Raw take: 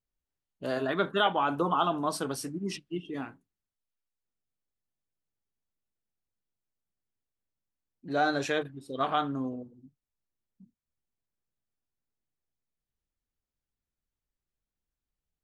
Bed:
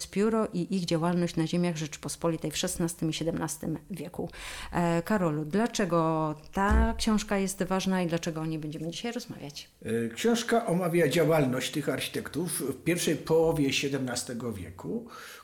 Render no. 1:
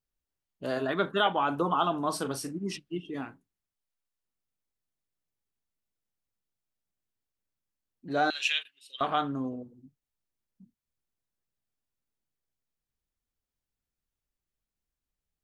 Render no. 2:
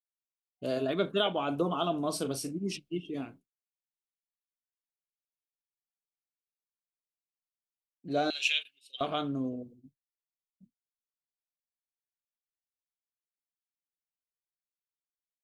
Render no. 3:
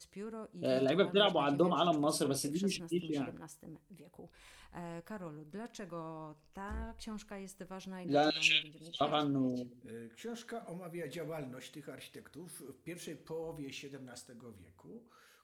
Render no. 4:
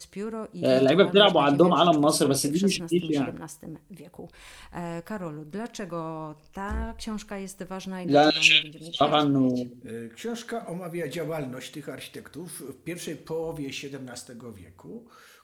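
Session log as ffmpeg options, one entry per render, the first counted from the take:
-filter_complex "[0:a]asettb=1/sr,asplit=3[a][b][c];[a]atrim=end=2.054[d];[b]atrim=start=2.05:end=2.58,asetpts=PTS-STARTPTS,afade=t=in:d=0.004:c=qsin,afade=t=out:st=0.526:d=0.004:c=qsin,asplit=2[e][f];[f]adelay=38,volume=-11dB[g];[e][g]amix=inputs=2:normalize=0,atrim=end_sample=23373[h];[c]atrim=start=2.576[i];[d][h]acrossfade=d=0.004:c1=hsin:c2=qsin[j];[j][i]acrossfade=d=0.004:c1=qsin:c2=hsin,asettb=1/sr,asplit=3[k][l][m];[k]atrim=end=8.304[n];[l]atrim=start=8.3:end=9.01,asetpts=PTS-STARTPTS,afade=t=in:d=0.004:c=qsin,afade=t=out:st=0.706:d=0.004:c=qsin,highpass=f=2.8k:t=q:w=8.1[o];[m]atrim=start=9.006[p];[n][o]acrossfade=d=0.004:c1=hsin:c2=qsin[q];[q][p]acrossfade=d=0.004:c1=qsin:c2=hsin"
-af "agate=range=-33dB:threshold=-49dB:ratio=3:detection=peak,superequalizer=9b=0.355:10b=0.398:11b=0.316"
-filter_complex "[1:a]volume=-18.5dB[a];[0:a][a]amix=inputs=2:normalize=0"
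-af "volume=11dB"

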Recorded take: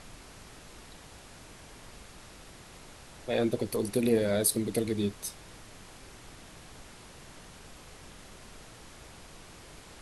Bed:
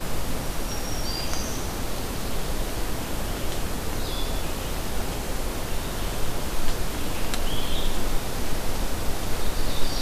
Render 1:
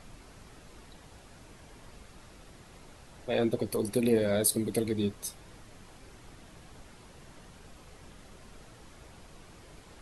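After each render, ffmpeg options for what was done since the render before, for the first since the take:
-af "afftdn=nr=6:nf=-51"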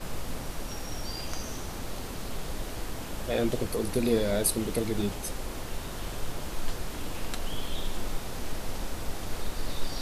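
-filter_complex "[1:a]volume=-7.5dB[a];[0:a][a]amix=inputs=2:normalize=0"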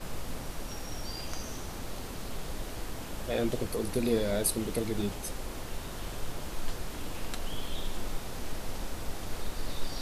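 -af "volume=-2.5dB"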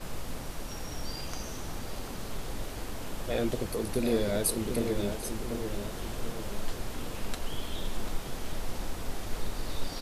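-filter_complex "[0:a]asplit=2[a][b];[b]adelay=741,lowpass=f=2k:p=1,volume=-6.5dB,asplit=2[c][d];[d]adelay=741,lowpass=f=2k:p=1,volume=0.53,asplit=2[e][f];[f]adelay=741,lowpass=f=2k:p=1,volume=0.53,asplit=2[g][h];[h]adelay=741,lowpass=f=2k:p=1,volume=0.53,asplit=2[i][j];[j]adelay=741,lowpass=f=2k:p=1,volume=0.53,asplit=2[k][l];[l]adelay=741,lowpass=f=2k:p=1,volume=0.53,asplit=2[m][n];[n]adelay=741,lowpass=f=2k:p=1,volume=0.53[o];[a][c][e][g][i][k][m][o]amix=inputs=8:normalize=0"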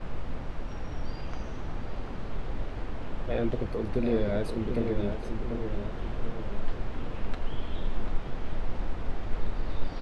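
-af "lowpass=2.4k,lowshelf=f=120:g=5.5"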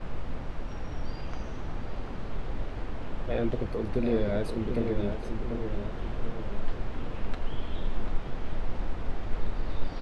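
-af anull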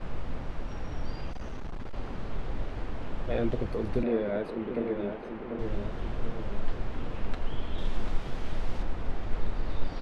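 -filter_complex "[0:a]asettb=1/sr,asplit=3[a][b][c];[a]atrim=end=1.324[d];[b]atrim=start=1.32:end=1.94,asetpts=PTS-STARTPTS,afade=t=in:d=0.004:c=qsin,afade=t=out:st=0.616:d=0.004:c=qsin,asoftclip=type=hard:threshold=-31.5dB[e];[c]atrim=start=1.936[f];[d][e]acrossfade=d=0.004:c1=hsin:c2=qsin[g];[g][f]acrossfade=d=0.004:c1=qsin:c2=hsin,asettb=1/sr,asplit=3[h][i][j];[h]atrim=end=4.034[k];[i]atrim=start=4.03:end=5.59,asetpts=PTS-STARTPTS,afade=t=in:d=0.004:c=qsin,afade=t=out:st=1.556:d=0.004:c=qsin,acrossover=split=180 3200:gain=0.141 1 0.141[l][m][n];[l][m][n]amix=inputs=3:normalize=0[o];[j]atrim=start=5.586[p];[k][o]acrossfade=d=0.004:c1=hsin:c2=qsin[q];[q][p]acrossfade=d=0.004:c1=qsin:c2=hsin,asettb=1/sr,asplit=3[r][s][t];[r]atrim=end=7.784[u];[s]atrim=start=7.78:end=8.83,asetpts=PTS-STARTPTS,afade=t=in:d=0.004:c=qsin,afade=t=out:st=1.046:d=0.004:c=qsin,highshelf=f=4k:g=9[v];[t]atrim=start=8.826[w];[u][v]acrossfade=d=0.004:c1=hsin:c2=qsin[x];[x][w]acrossfade=d=0.004:c1=qsin:c2=hsin"

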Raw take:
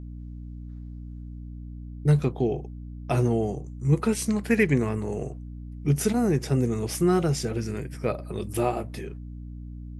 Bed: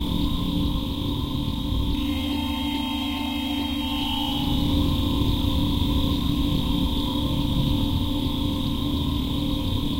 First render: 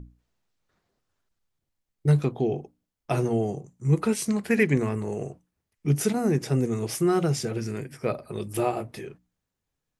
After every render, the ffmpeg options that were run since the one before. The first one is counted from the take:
-af "bandreject=f=60:t=h:w=6,bandreject=f=120:t=h:w=6,bandreject=f=180:t=h:w=6,bandreject=f=240:t=h:w=6,bandreject=f=300:t=h:w=6"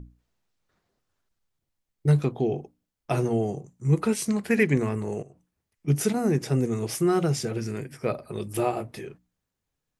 -filter_complex "[0:a]asplit=3[a][b][c];[a]afade=t=out:st=5.21:d=0.02[d];[b]acompressor=threshold=-49dB:ratio=3:attack=3.2:release=140:knee=1:detection=peak,afade=t=in:st=5.21:d=0.02,afade=t=out:st=5.87:d=0.02[e];[c]afade=t=in:st=5.87:d=0.02[f];[d][e][f]amix=inputs=3:normalize=0"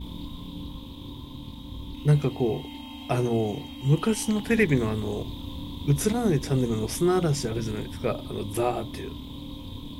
-filter_complex "[1:a]volume=-13.5dB[a];[0:a][a]amix=inputs=2:normalize=0"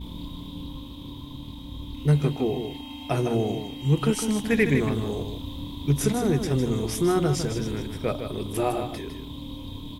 -af "aecho=1:1:156:0.398"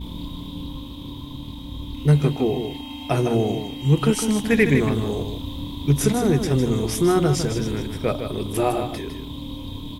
-af "volume=4dB"

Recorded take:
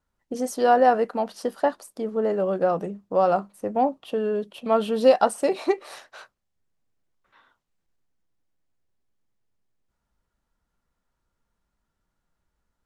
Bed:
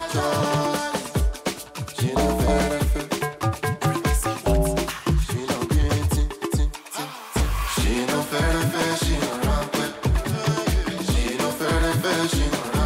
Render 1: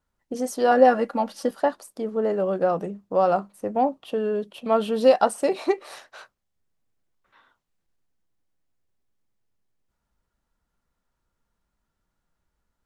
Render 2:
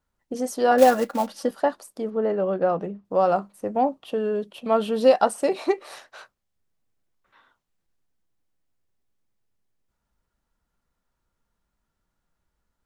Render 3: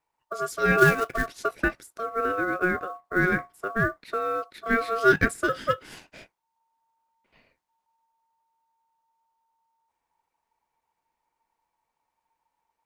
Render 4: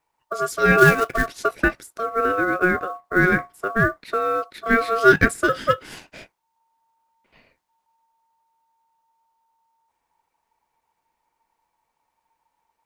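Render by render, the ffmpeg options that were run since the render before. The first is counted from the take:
-filter_complex "[0:a]asettb=1/sr,asplit=3[a][b][c];[a]atrim=end=0.714[d];[b]atrim=start=0.71:end=1.51,asetpts=PTS-STARTPTS,afade=t=in:d=0.004:c=qsin,afade=t=out:st=0.796:d=0.004:c=qsin,aecho=1:1:3.6:0.76,atrim=end_sample=35280[e];[c]atrim=start=1.506[f];[d][e]acrossfade=d=0.004:c1=hsin:c2=qsin[g];[g][f]acrossfade=d=0.004:c1=qsin:c2=hsin"
-filter_complex "[0:a]asettb=1/sr,asplit=3[a][b][c];[a]atrim=end=0.784[d];[b]atrim=start=0.78:end=1.27,asetpts=PTS-STARTPTS,afade=t=in:d=0.004:c=qsin,afade=t=out:st=0.486:d=0.004:c=qsin,acrusher=bits=4:mode=log:mix=0:aa=0.000001[e];[c]atrim=start=1.266[f];[d][e]acrossfade=d=0.004:c1=hsin:c2=qsin[g];[g][f]acrossfade=d=0.004:c1=qsin:c2=hsin,asettb=1/sr,asplit=3[h][i][j];[h]atrim=end=2.104[k];[i]atrim=start=2.1:end=3.05,asetpts=PTS-STARTPTS,afade=t=in:d=0.004:c=qsin,afade=t=out:st=0.946:d=0.004:c=qsin,lowpass=3.9k[l];[j]atrim=start=3.046[m];[k][l]acrossfade=d=0.004:c1=hsin:c2=qsin[n];[n][m]acrossfade=d=0.004:c1=qsin:c2=hsin"
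-af "aeval=exprs='val(0)*sin(2*PI*910*n/s)':c=same,acrusher=bits=8:mode=log:mix=0:aa=0.000001"
-af "volume=5.5dB,alimiter=limit=-1dB:level=0:latency=1"

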